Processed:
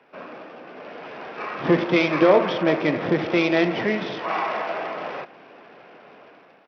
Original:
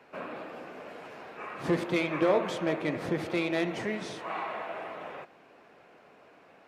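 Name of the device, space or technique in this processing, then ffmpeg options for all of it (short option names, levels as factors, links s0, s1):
Bluetooth headset: -af "highpass=130,dynaudnorm=f=620:g=3:m=3.16,aresample=8000,aresample=44100" -ar 44100 -c:a sbc -b:a 64k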